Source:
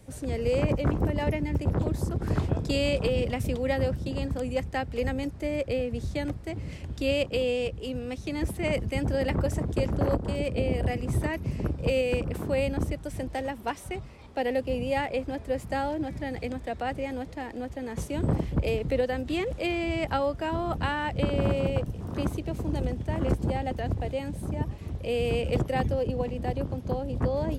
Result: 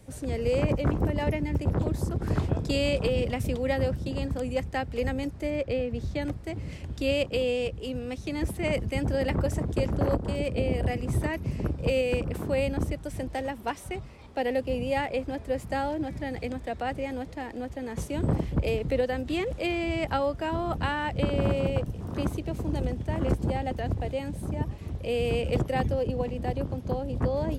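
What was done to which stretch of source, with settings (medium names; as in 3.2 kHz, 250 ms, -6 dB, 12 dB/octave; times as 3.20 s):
5.50–6.22 s: peaking EQ 10 kHz -9.5 dB 1.1 oct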